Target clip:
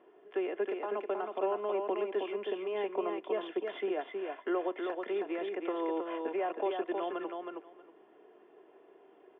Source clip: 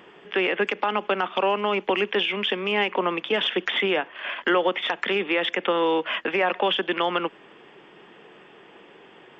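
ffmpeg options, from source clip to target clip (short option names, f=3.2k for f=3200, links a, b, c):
-af "bandpass=f=510:t=q:w=1.4:csg=0,aecho=1:1:2.9:0.55,aecho=1:1:318|636|954:0.596|0.0953|0.0152,volume=-8.5dB"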